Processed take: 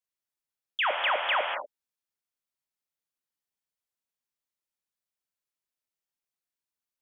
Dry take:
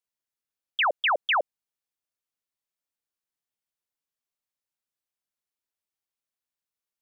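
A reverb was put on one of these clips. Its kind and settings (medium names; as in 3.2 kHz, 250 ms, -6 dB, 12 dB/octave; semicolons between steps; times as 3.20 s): gated-style reverb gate 260 ms flat, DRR 2 dB; trim -4 dB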